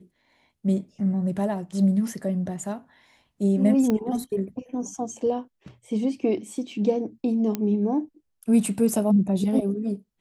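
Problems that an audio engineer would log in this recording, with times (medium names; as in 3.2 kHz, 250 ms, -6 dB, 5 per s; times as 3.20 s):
3.90 s: pop -13 dBFS
7.55 s: pop -13 dBFS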